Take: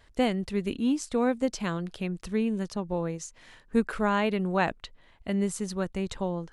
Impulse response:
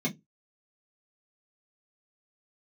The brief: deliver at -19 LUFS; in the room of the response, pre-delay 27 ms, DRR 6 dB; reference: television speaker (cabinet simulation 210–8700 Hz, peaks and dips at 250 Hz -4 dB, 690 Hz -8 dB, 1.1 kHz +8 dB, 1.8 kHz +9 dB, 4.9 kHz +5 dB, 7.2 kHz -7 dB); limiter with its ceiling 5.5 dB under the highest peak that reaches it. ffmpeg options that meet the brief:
-filter_complex "[0:a]alimiter=limit=0.126:level=0:latency=1,asplit=2[s0][s1];[1:a]atrim=start_sample=2205,adelay=27[s2];[s1][s2]afir=irnorm=-1:irlink=0,volume=0.237[s3];[s0][s3]amix=inputs=2:normalize=0,highpass=f=210:w=0.5412,highpass=f=210:w=1.3066,equalizer=f=250:t=q:w=4:g=-4,equalizer=f=690:t=q:w=4:g=-8,equalizer=f=1100:t=q:w=4:g=8,equalizer=f=1800:t=q:w=4:g=9,equalizer=f=4900:t=q:w=4:g=5,equalizer=f=7200:t=q:w=4:g=-7,lowpass=f=8700:w=0.5412,lowpass=f=8700:w=1.3066,volume=2.66"

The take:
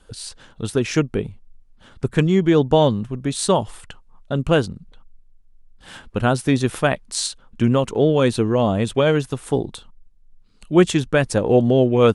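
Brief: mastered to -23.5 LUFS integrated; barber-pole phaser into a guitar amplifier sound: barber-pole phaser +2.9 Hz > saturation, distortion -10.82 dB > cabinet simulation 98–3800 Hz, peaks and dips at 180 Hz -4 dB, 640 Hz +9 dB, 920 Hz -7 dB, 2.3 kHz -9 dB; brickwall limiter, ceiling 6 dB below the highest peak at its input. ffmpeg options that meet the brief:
-filter_complex "[0:a]alimiter=limit=0.376:level=0:latency=1,asplit=2[s0][s1];[s1]afreqshift=2.9[s2];[s0][s2]amix=inputs=2:normalize=1,asoftclip=threshold=0.0944,highpass=98,equalizer=f=180:t=q:w=4:g=-4,equalizer=f=640:t=q:w=4:g=9,equalizer=f=920:t=q:w=4:g=-7,equalizer=f=2300:t=q:w=4:g=-9,lowpass=f=3800:w=0.5412,lowpass=f=3800:w=1.3066,volume=1.5"

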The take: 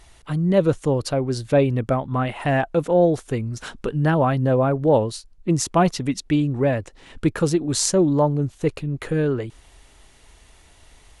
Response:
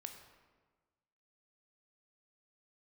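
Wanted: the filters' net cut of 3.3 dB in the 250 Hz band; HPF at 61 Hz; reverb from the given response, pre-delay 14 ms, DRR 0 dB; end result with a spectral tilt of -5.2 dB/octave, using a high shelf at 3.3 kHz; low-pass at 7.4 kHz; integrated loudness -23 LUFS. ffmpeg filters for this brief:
-filter_complex "[0:a]highpass=61,lowpass=7400,equalizer=f=250:t=o:g=-5,highshelf=f=3300:g=6,asplit=2[s0][s1];[1:a]atrim=start_sample=2205,adelay=14[s2];[s1][s2]afir=irnorm=-1:irlink=0,volume=1.58[s3];[s0][s3]amix=inputs=2:normalize=0,volume=0.668"

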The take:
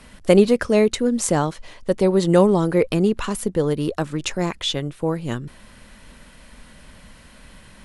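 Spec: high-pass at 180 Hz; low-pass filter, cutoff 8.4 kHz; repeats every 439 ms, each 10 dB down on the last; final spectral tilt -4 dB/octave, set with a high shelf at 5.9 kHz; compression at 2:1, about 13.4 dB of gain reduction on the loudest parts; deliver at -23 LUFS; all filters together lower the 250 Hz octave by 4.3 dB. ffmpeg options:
-af "highpass=180,lowpass=8400,equalizer=f=250:t=o:g=-4,highshelf=f=5900:g=6.5,acompressor=threshold=0.0158:ratio=2,aecho=1:1:439|878|1317|1756:0.316|0.101|0.0324|0.0104,volume=2.82"

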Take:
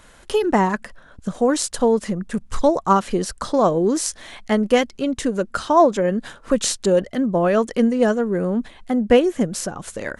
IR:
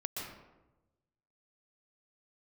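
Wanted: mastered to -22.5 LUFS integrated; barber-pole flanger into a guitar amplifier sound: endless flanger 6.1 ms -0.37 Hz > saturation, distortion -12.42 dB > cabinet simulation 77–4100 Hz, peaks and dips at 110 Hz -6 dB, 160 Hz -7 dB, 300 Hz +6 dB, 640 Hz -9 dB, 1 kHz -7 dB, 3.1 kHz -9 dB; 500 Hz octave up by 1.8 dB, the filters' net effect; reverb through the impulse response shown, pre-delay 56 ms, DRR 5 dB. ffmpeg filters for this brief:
-filter_complex "[0:a]equalizer=f=500:t=o:g=4.5,asplit=2[s0][s1];[1:a]atrim=start_sample=2205,adelay=56[s2];[s1][s2]afir=irnorm=-1:irlink=0,volume=0.473[s3];[s0][s3]amix=inputs=2:normalize=0,asplit=2[s4][s5];[s5]adelay=6.1,afreqshift=-0.37[s6];[s4][s6]amix=inputs=2:normalize=1,asoftclip=threshold=0.237,highpass=77,equalizer=f=110:t=q:w=4:g=-6,equalizer=f=160:t=q:w=4:g=-7,equalizer=f=300:t=q:w=4:g=6,equalizer=f=640:t=q:w=4:g=-9,equalizer=f=1000:t=q:w=4:g=-7,equalizer=f=3100:t=q:w=4:g=-9,lowpass=f=4100:w=0.5412,lowpass=f=4100:w=1.3066,volume=1.06"

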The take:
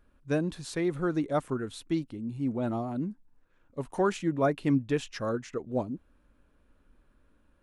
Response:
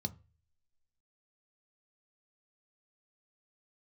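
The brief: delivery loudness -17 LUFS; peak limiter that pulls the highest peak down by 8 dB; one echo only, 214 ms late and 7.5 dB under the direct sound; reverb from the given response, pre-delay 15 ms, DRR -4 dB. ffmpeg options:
-filter_complex "[0:a]alimiter=limit=0.0708:level=0:latency=1,aecho=1:1:214:0.422,asplit=2[s0][s1];[1:a]atrim=start_sample=2205,adelay=15[s2];[s1][s2]afir=irnorm=-1:irlink=0,volume=1.78[s3];[s0][s3]amix=inputs=2:normalize=0,volume=1.68"

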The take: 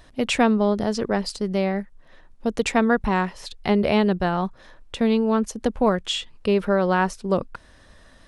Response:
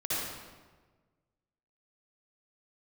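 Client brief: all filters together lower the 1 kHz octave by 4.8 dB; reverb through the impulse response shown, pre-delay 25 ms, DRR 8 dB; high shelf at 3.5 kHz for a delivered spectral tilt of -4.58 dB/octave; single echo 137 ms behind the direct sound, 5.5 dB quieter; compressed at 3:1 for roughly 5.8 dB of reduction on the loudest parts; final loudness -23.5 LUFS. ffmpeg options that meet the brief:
-filter_complex "[0:a]equalizer=f=1000:t=o:g=-7,highshelf=f=3500:g=5,acompressor=threshold=0.0708:ratio=3,aecho=1:1:137:0.531,asplit=2[s0][s1];[1:a]atrim=start_sample=2205,adelay=25[s2];[s1][s2]afir=irnorm=-1:irlink=0,volume=0.178[s3];[s0][s3]amix=inputs=2:normalize=0,volume=1.41"

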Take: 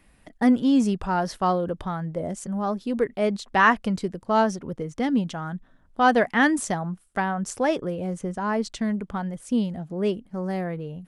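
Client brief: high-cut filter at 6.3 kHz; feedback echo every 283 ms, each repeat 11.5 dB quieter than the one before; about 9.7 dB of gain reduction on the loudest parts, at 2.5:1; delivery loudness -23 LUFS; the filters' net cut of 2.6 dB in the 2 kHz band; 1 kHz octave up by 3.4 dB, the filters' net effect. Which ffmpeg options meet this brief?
-af "lowpass=6300,equalizer=f=1000:t=o:g=5.5,equalizer=f=2000:t=o:g=-5.5,acompressor=threshold=0.0447:ratio=2.5,aecho=1:1:283|566|849:0.266|0.0718|0.0194,volume=2.24"

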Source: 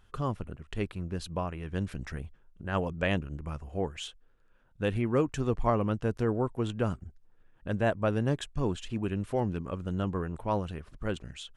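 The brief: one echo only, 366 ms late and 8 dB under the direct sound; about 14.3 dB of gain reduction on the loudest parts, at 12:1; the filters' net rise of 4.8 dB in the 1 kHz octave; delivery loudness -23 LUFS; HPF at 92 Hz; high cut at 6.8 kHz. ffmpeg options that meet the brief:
-af "highpass=92,lowpass=6800,equalizer=f=1000:t=o:g=6,acompressor=threshold=0.0251:ratio=12,aecho=1:1:366:0.398,volume=5.96"

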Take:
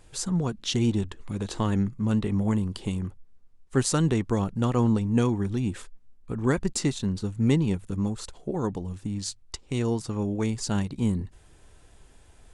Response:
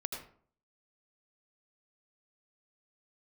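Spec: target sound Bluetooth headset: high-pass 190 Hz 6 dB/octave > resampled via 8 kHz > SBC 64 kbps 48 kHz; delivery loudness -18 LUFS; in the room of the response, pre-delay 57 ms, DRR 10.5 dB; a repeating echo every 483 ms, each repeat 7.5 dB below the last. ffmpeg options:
-filter_complex "[0:a]aecho=1:1:483|966|1449|1932|2415:0.422|0.177|0.0744|0.0312|0.0131,asplit=2[s0][s1];[1:a]atrim=start_sample=2205,adelay=57[s2];[s1][s2]afir=irnorm=-1:irlink=0,volume=0.266[s3];[s0][s3]amix=inputs=2:normalize=0,highpass=f=190:p=1,aresample=8000,aresample=44100,volume=3.76" -ar 48000 -c:a sbc -b:a 64k

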